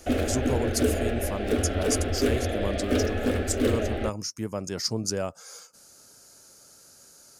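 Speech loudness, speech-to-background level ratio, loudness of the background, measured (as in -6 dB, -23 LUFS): -31.5 LUFS, -4.0 dB, -27.5 LUFS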